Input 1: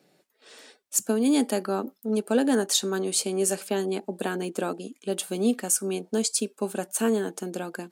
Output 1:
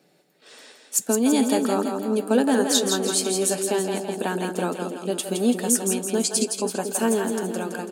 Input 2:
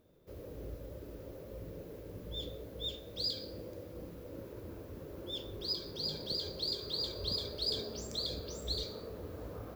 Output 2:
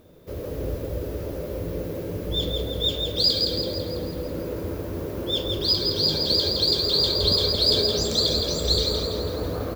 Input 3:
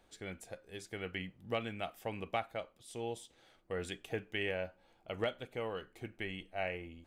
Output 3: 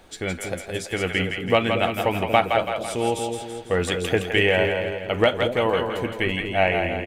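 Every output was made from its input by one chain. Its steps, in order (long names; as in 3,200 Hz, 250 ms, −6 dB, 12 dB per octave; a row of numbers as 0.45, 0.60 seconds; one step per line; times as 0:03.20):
double-tracking delay 12 ms −14 dB
dynamic equaliser 920 Hz, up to +5 dB, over −53 dBFS, Q 5.1
echo with a time of its own for lows and highs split 530 Hz, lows 233 ms, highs 166 ms, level −5 dB
loudness normalisation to −23 LKFS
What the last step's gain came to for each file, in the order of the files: +2.0, +14.5, +16.5 decibels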